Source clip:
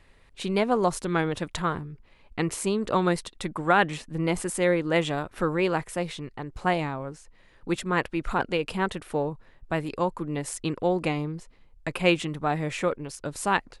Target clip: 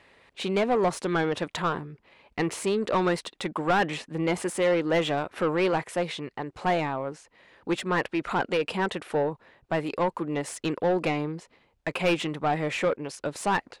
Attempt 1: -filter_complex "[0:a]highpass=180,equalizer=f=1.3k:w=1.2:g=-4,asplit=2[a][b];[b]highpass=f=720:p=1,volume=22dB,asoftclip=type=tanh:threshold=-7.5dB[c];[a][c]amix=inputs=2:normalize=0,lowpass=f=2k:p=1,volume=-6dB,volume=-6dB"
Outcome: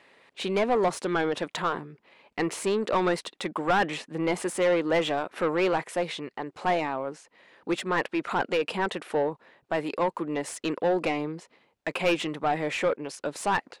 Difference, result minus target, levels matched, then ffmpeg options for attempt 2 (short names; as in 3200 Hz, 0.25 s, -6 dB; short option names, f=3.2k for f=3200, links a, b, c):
125 Hz band -4.5 dB
-filter_complex "[0:a]highpass=53,equalizer=f=1.3k:w=1.2:g=-4,asplit=2[a][b];[b]highpass=f=720:p=1,volume=22dB,asoftclip=type=tanh:threshold=-7.5dB[c];[a][c]amix=inputs=2:normalize=0,lowpass=f=2k:p=1,volume=-6dB,volume=-6dB"